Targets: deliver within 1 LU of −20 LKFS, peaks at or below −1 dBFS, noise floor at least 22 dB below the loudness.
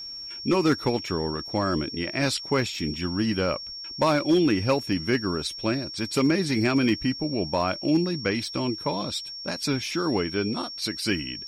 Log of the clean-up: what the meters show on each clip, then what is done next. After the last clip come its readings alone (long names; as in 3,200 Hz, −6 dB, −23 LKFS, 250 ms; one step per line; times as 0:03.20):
share of clipped samples 0.3%; peaks flattened at −14.0 dBFS; interfering tone 5,500 Hz; level of the tone −35 dBFS; integrated loudness −25.5 LKFS; sample peak −14.0 dBFS; target loudness −20.0 LKFS
→ clipped peaks rebuilt −14 dBFS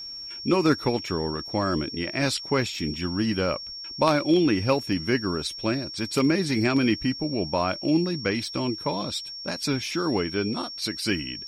share of clipped samples 0.0%; interfering tone 5,500 Hz; level of the tone −35 dBFS
→ notch filter 5,500 Hz, Q 30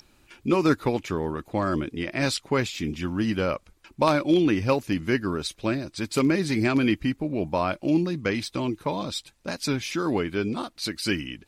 interfering tone none found; integrated loudness −26.0 LKFS; sample peak −4.5 dBFS; target loudness −20.0 LKFS
→ level +6 dB
brickwall limiter −1 dBFS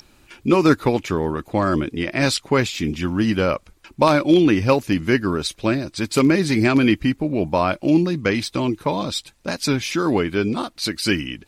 integrated loudness −20.0 LKFS; sample peak −1.0 dBFS; background noise floor −56 dBFS